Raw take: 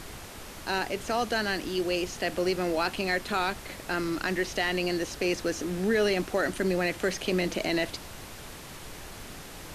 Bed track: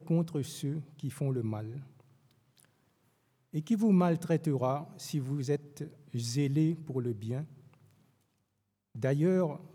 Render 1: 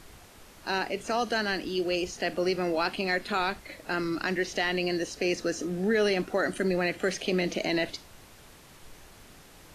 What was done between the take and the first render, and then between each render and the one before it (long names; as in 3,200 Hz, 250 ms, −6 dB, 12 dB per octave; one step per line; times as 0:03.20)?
noise reduction from a noise print 9 dB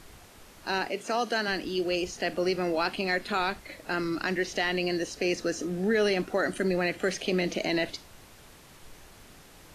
0:00.88–0:01.48: high-pass filter 190 Hz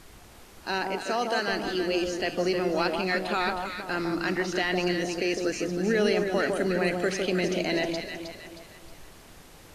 delay that swaps between a low-pass and a high-pass 157 ms, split 1,200 Hz, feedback 64%, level −3 dB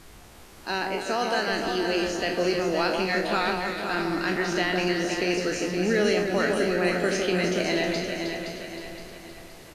peak hold with a decay on every bin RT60 0.38 s
repeating echo 519 ms, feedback 43%, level −7 dB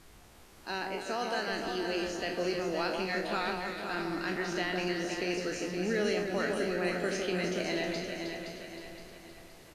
level −7.5 dB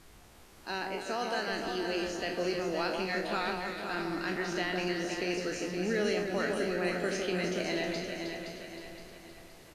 no processing that can be heard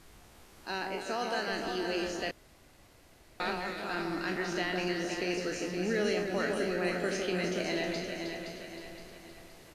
0:02.31–0:03.40: fill with room tone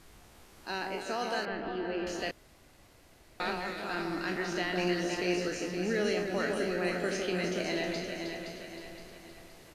0:01.45–0:02.07: high-frequency loss of the air 410 metres
0:04.75–0:05.48: double-tracking delay 17 ms −5 dB